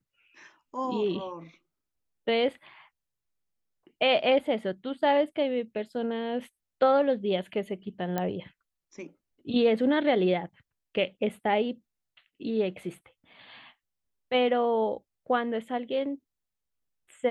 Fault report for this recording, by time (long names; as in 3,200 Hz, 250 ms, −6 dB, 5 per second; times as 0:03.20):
0:08.18: click −15 dBFS